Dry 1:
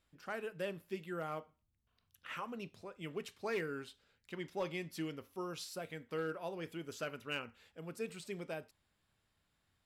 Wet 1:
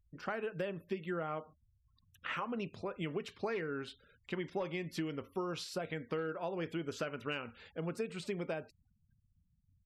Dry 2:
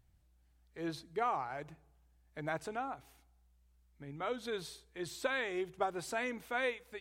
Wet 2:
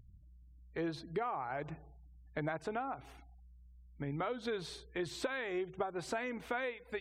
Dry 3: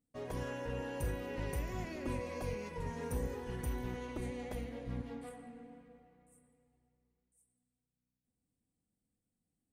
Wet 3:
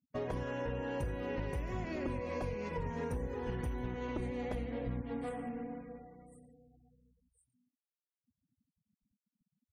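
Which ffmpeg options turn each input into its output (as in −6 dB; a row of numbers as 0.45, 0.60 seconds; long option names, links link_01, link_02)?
-af "acompressor=threshold=-45dB:ratio=8,afftfilt=real='re*gte(hypot(re,im),0.000398)':imag='im*gte(hypot(re,im),0.000398)':win_size=1024:overlap=0.75,aemphasis=mode=reproduction:type=50fm,volume=10.5dB"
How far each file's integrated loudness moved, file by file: +3.0, −1.0, +2.0 LU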